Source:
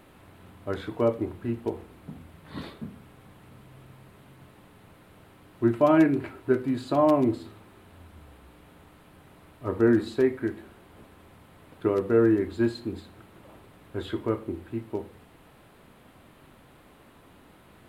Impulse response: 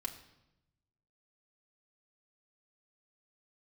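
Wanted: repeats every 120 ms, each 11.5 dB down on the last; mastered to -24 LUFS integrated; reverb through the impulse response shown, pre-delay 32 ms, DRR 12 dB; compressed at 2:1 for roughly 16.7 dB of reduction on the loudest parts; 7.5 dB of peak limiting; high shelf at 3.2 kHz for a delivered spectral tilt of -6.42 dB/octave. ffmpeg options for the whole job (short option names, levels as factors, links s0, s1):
-filter_complex "[0:a]highshelf=f=3200:g=-4,acompressor=threshold=0.00398:ratio=2,alimiter=level_in=2.82:limit=0.0631:level=0:latency=1,volume=0.355,aecho=1:1:120|240|360:0.266|0.0718|0.0194,asplit=2[s0][s1];[1:a]atrim=start_sample=2205,adelay=32[s2];[s1][s2]afir=irnorm=-1:irlink=0,volume=0.266[s3];[s0][s3]amix=inputs=2:normalize=0,volume=14.1"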